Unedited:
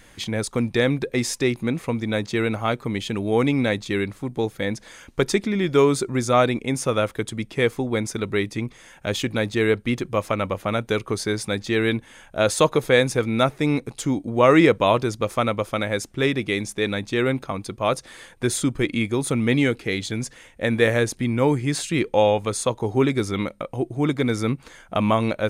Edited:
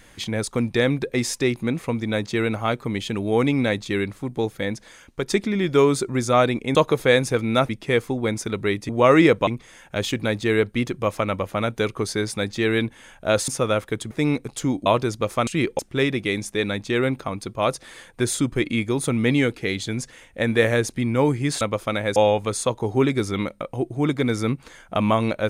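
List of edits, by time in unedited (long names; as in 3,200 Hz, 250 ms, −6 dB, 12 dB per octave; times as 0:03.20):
0:04.55–0:05.30: fade out, to −7 dB
0:06.75–0:07.38: swap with 0:12.59–0:13.53
0:14.28–0:14.86: move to 0:08.58
0:15.47–0:16.02: swap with 0:21.84–0:22.16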